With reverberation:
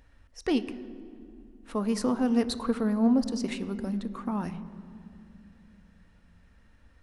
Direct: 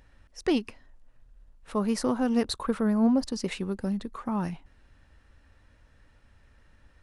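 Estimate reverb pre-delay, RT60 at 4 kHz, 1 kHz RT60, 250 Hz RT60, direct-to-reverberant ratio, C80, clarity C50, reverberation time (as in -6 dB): 3 ms, 1.6 s, 2.4 s, 3.6 s, 11.0 dB, 15.0 dB, 14.0 dB, 2.6 s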